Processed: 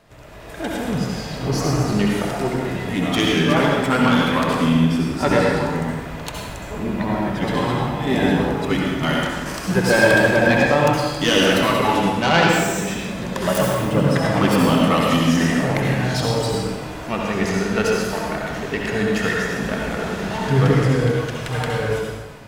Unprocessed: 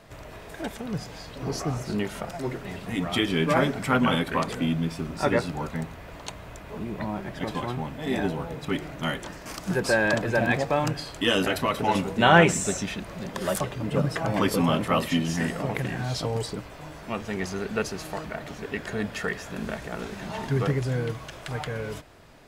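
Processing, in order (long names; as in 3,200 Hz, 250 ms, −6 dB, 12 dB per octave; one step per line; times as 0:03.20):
phase distortion by the signal itself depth 0.17 ms
automatic gain control gain up to 9 dB
convolution reverb RT60 1.3 s, pre-delay 58 ms, DRR −2 dB
level −3 dB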